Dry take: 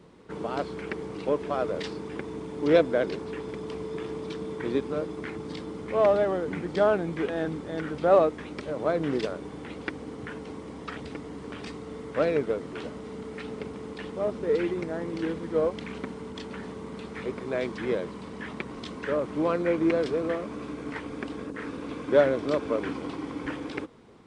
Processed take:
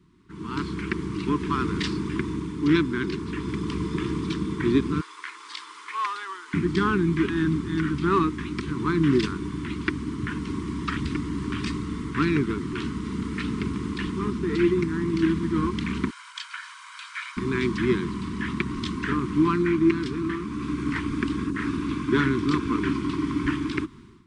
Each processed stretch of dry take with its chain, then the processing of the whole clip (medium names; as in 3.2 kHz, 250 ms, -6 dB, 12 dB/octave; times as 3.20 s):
5.01–6.54 s: high-pass 770 Hz 24 dB/octave + dynamic bell 1.9 kHz, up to -5 dB, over -44 dBFS, Q 0.74
16.10–17.37 s: steep high-pass 1 kHz 72 dB/octave + comb 1.3 ms, depth 50%
whole clip: elliptic band-stop 370–1000 Hz, stop band 40 dB; bass shelf 210 Hz +7.5 dB; level rider gain up to 17 dB; trim -8 dB